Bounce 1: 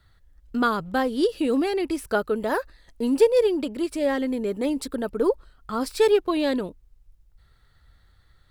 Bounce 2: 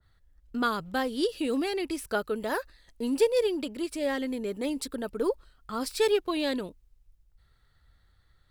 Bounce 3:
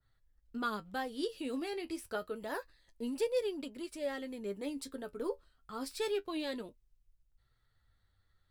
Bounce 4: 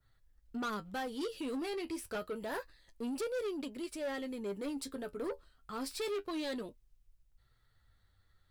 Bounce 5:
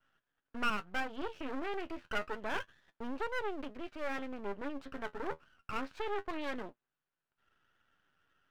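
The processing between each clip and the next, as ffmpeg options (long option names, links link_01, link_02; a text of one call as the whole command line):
ffmpeg -i in.wav -af "adynamicequalizer=threshold=0.0126:dfrequency=1800:dqfactor=0.7:tfrequency=1800:tqfactor=0.7:attack=5:release=100:ratio=0.375:range=3:mode=boostabove:tftype=highshelf,volume=-6dB" out.wav
ffmpeg -i in.wav -af "flanger=delay=7.2:depth=5.3:regen=49:speed=0.28:shape=triangular,volume=-5dB" out.wav
ffmpeg -i in.wav -af "asoftclip=type=tanh:threshold=-36.5dB,volume=3.5dB" out.wav
ffmpeg -i in.wav -af "highpass=frequency=210:width=0.5412,highpass=frequency=210:width=1.3066,equalizer=frequency=220:width_type=q:width=4:gain=-5,equalizer=frequency=320:width_type=q:width=4:gain=-5,equalizer=frequency=500:width_type=q:width=4:gain=-6,equalizer=frequency=1500:width_type=q:width=4:gain=9,equalizer=frequency=2100:width_type=q:width=4:gain=-7,lowpass=frequency=2600:width=0.5412,lowpass=frequency=2600:width=1.3066,aeval=exprs='max(val(0),0)':channel_layout=same,volume=6.5dB" out.wav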